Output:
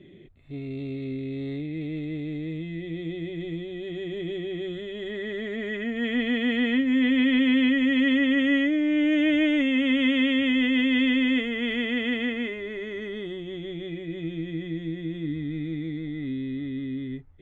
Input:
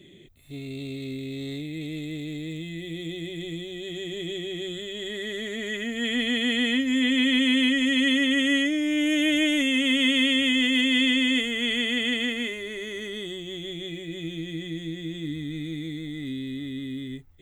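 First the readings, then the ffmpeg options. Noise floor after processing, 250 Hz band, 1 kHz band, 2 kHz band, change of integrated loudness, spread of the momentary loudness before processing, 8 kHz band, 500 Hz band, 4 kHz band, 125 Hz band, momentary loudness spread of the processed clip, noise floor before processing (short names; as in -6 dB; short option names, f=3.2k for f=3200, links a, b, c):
-37 dBFS, +2.0 dB, +1.5 dB, -2.0 dB, -0.5 dB, 14 LU, under -20 dB, +2.0 dB, -8.0 dB, +2.0 dB, 13 LU, -37 dBFS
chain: -af "lowpass=1.9k,volume=2dB"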